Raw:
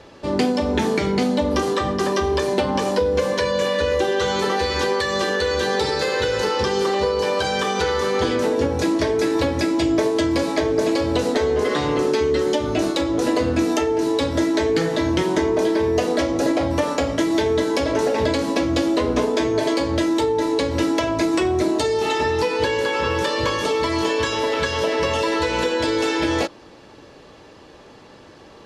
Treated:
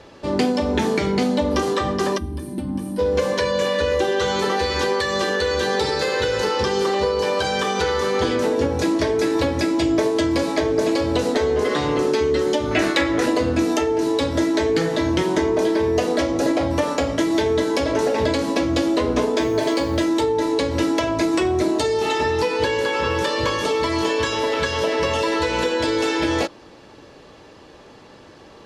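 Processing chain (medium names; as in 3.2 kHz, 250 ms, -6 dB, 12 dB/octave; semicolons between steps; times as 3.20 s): 2.18–2.99 s: time-frequency box 350–8200 Hz -19 dB; 12.71–13.26 s: peaking EQ 1.9 kHz +14.5 dB 1 oct; 19.38–20.04 s: added noise white -55 dBFS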